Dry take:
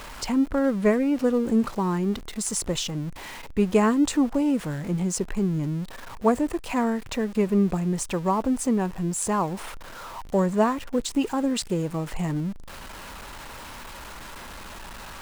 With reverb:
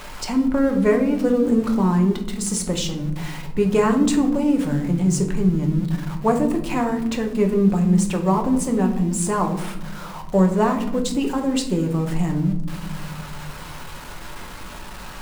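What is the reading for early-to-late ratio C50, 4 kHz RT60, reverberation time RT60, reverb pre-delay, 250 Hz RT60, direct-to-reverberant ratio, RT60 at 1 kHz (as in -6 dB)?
9.5 dB, 0.45 s, 0.95 s, 5 ms, 2.3 s, 3.0 dB, 0.75 s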